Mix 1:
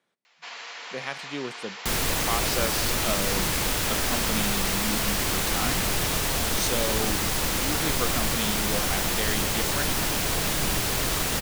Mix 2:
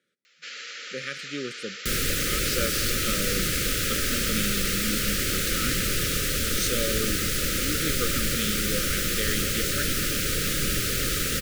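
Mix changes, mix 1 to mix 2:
first sound: add high-shelf EQ 4,900 Hz +6 dB
master: add linear-phase brick-wall band-stop 590–1,200 Hz

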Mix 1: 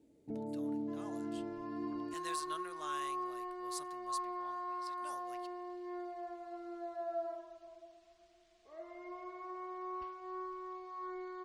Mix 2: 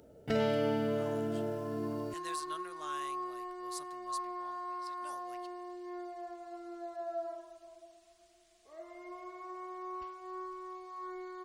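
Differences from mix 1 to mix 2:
first sound: remove formant resonators in series u
second sound: remove high-frequency loss of the air 110 metres

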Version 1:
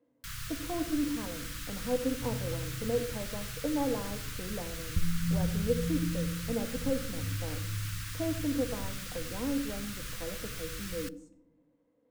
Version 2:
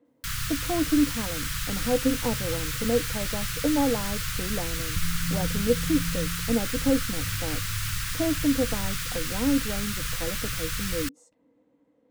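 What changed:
speech +9.5 dB
first sound +10.5 dB
reverb: off

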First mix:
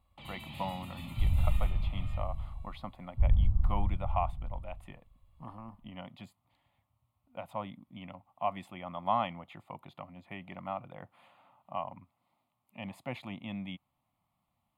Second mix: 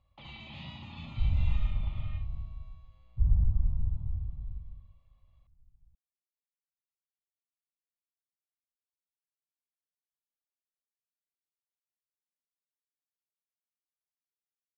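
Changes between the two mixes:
speech: muted
first sound: add Butterworth low-pass 6,500 Hz 72 dB per octave
second sound: add high-frequency loss of the air 450 metres

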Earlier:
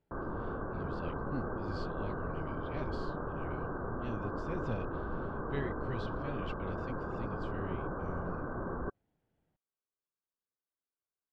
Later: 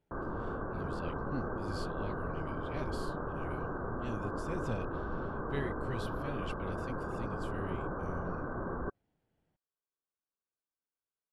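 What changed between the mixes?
speech: add parametric band 4,300 Hz −2 dB 0.77 octaves
master: remove high-frequency loss of the air 160 metres

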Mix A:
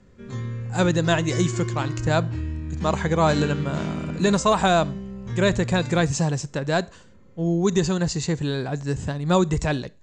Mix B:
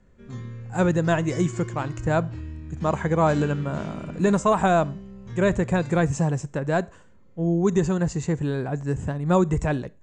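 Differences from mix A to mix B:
speech: add parametric band 4,400 Hz −15 dB 1.2 octaves
background −6.5 dB

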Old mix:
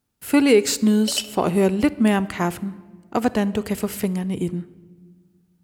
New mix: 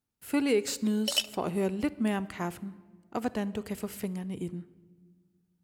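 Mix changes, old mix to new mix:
speech −11.0 dB
background: send −10.5 dB

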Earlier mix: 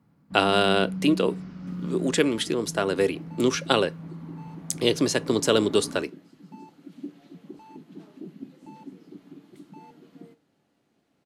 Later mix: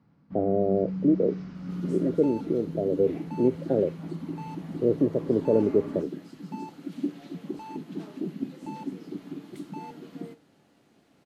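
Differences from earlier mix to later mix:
speech: add Butterworth low-pass 630 Hz 48 dB per octave
second sound +8.0 dB

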